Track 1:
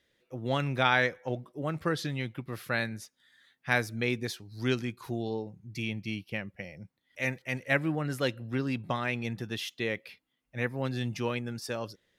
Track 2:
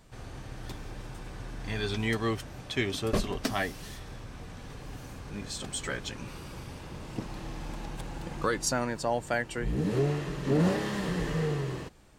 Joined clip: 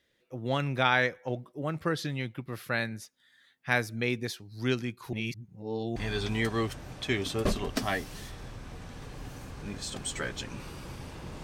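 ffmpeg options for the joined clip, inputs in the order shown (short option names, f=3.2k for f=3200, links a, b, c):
-filter_complex "[0:a]apad=whole_dur=11.43,atrim=end=11.43,asplit=2[a][b];[a]atrim=end=5.132[c];[b]atrim=start=5.128:end=5.962,asetpts=PTS-STARTPTS,areverse[d];[1:a]atrim=start=1.638:end=7.11[e];[c][d]acrossfade=d=0.004:c1=hsin:c2=hsin[f];[f][e]acrossfade=d=0.004:c1=hsin:c2=hsin"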